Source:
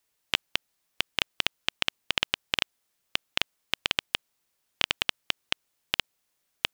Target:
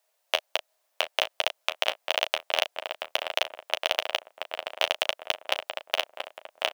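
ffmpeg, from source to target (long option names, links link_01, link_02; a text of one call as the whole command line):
ffmpeg -i in.wav -filter_complex "[0:a]asplit=2[link_01][link_02];[link_02]adelay=680,lowpass=frequency=1600:poles=1,volume=-5dB,asplit=2[link_03][link_04];[link_04]adelay=680,lowpass=frequency=1600:poles=1,volume=0.47,asplit=2[link_05][link_06];[link_06]adelay=680,lowpass=frequency=1600:poles=1,volume=0.47,asplit=2[link_07][link_08];[link_08]adelay=680,lowpass=frequency=1600:poles=1,volume=0.47,asplit=2[link_09][link_10];[link_10]adelay=680,lowpass=frequency=1600:poles=1,volume=0.47,asplit=2[link_11][link_12];[link_12]adelay=680,lowpass=frequency=1600:poles=1,volume=0.47[link_13];[link_03][link_05][link_07][link_09][link_11][link_13]amix=inputs=6:normalize=0[link_14];[link_01][link_14]amix=inputs=2:normalize=0,acrusher=bits=4:mode=log:mix=0:aa=0.000001,highpass=frequency=620:width_type=q:width=4.9,acontrast=22,asplit=2[link_15][link_16];[link_16]aecho=0:1:11|36:0.316|0.237[link_17];[link_15][link_17]amix=inputs=2:normalize=0,volume=-4dB" out.wav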